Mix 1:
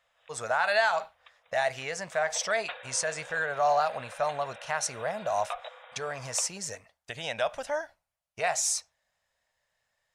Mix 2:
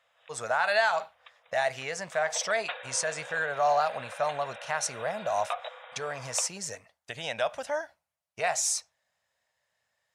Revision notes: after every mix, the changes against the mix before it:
background +3.0 dB; master: add HPF 87 Hz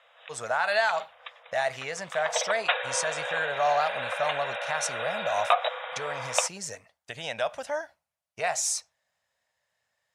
background +11.0 dB

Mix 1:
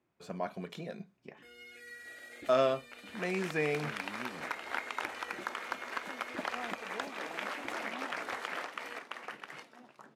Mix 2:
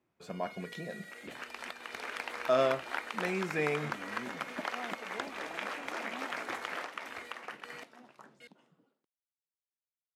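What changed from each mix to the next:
first sound: entry -1.15 s; second sound: entry -1.80 s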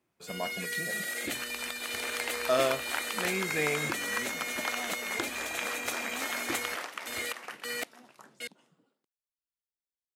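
first sound +12.0 dB; master: remove LPF 2400 Hz 6 dB/oct

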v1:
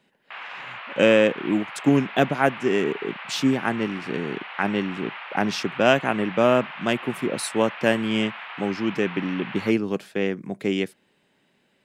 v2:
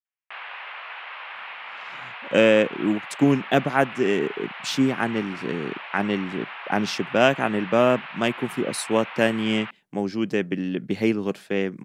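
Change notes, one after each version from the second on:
speech: entry +1.35 s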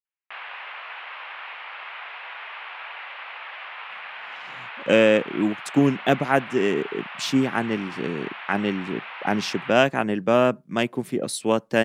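speech: entry +2.55 s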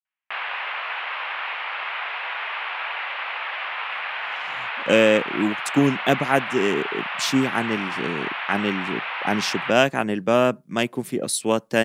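speech: add high shelf 4500 Hz +7.5 dB; background +8.0 dB

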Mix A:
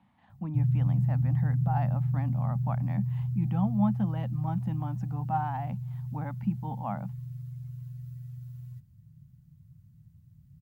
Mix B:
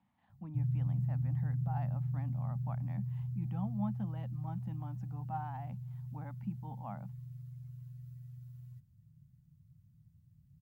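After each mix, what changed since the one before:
speech -10.5 dB; background -7.5 dB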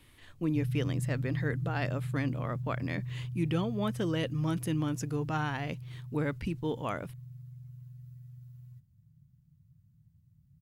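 speech: remove double band-pass 400 Hz, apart 2 oct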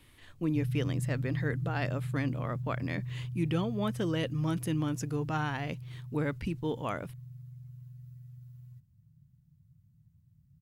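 none

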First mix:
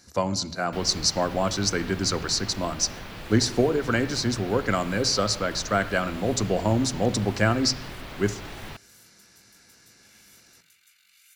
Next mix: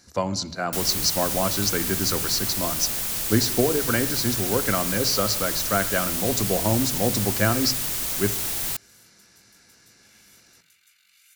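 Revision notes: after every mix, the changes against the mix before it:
second sound: remove air absorption 370 m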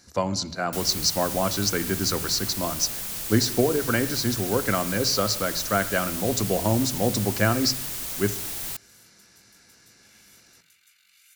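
second sound -5.0 dB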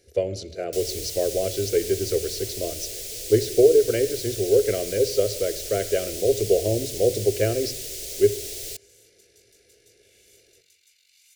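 speech: add band shelf 5600 Hz -12.5 dB 1.2 oct; master: add EQ curve 100 Hz 0 dB, 150 Hz -12 dB, 250 Hz -13 dB, 420 Hz +12 dB, 660 Hz -1 dB, 960 Hz -29 dB, 2100 Hz -4 dB, 5300 Hz +3 dB, 7700 Hz +1 dB, 13000 Hz -5 dB

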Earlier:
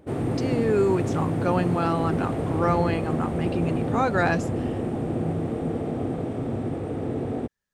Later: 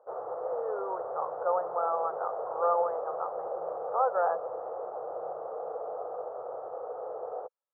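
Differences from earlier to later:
speech: add air absorption 410 m; master: add elliptic band-pass 500–1300 Hz, stop band 40 dB

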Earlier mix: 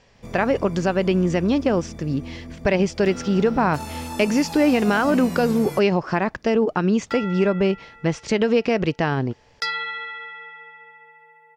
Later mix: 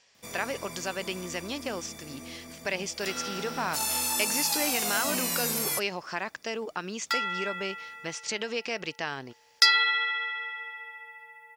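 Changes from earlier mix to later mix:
speech -10.0 dB; master: add tilt +4.5 dB/oct

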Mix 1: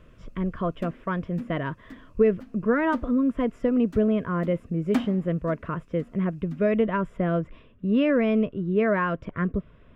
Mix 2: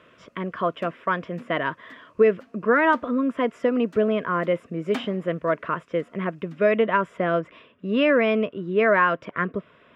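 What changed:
speech +7.0 dB; master: add weighting filter A

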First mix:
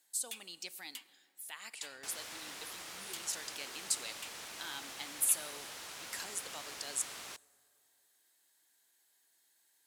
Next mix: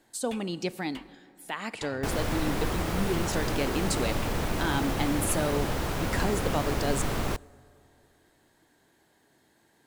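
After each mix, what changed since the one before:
first sound: add high shelf 2700 Hz -10.5 dB; second sound: remove air absorption 53 m; master: remove differentiator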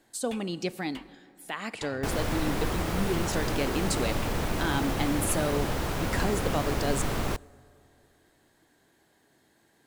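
speech: add notch 910 Hz, Q 20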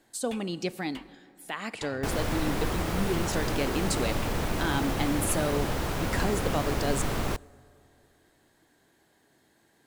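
none

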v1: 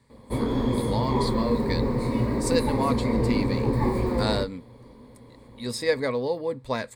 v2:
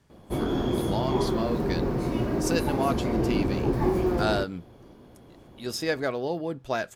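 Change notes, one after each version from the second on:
master: remove ripple EQ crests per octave 0.97, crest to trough 12 dB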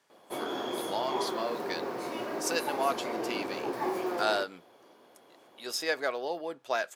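master: add HPF 560 Hz 12 dB/oct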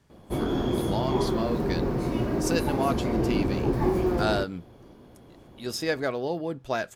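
master: remove HPF 560 Hz 12 dB/oct

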